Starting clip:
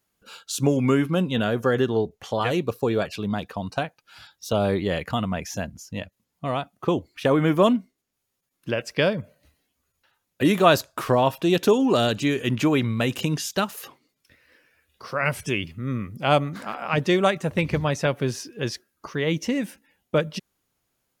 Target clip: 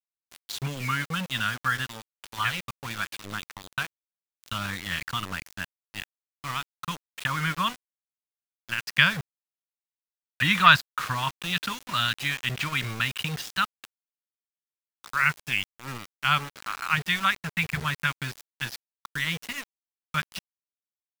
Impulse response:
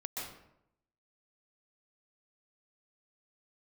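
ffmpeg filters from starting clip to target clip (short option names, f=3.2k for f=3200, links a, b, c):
-filter_complex "[0:a]asettb=1/sr,asplit=3[a][b][c];[a]atrim=end=8.864[d];[b]atrim=start=8.86:end=10.76,asetpts=PTS-STARTPTS,afade=t=in:d=0.004:c=qsin,afade=t=out:st=1.896:d=0.004:c=qsin,acontrast=32[e];[c]atrim=start=10.756[f];[d][e]acrossfade=d=0.004:c1=hsin:c2=qsin[g];[g][f]acrossfade=d=0.004:c1=qsin:c2=hsin,firequalizer=gain_entry='entry(160,0);entry(240,-11);entry(390,-29);entry(640,-18);entry(960,2);entry(1400,10);entry(2400,8);entry(3800,7);entry(6400,-3);entry(13000,-11)':delay=0.05:min_phase=1,aeval=exprs='val(0)*gte(abs(val(0)),0.0473)':c=same,volume=-5.5dB"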